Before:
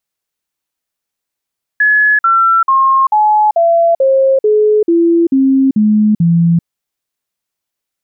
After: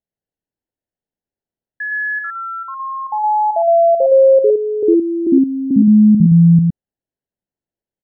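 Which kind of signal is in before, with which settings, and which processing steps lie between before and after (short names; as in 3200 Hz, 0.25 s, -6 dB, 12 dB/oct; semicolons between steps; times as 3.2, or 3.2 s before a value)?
stepped sine 1700 Hz down, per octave 3, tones 11, 0.39 s, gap 0.05 s -6.5 dBFS
running mean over 37 samples; on a send: echo 0.114 s -3 dB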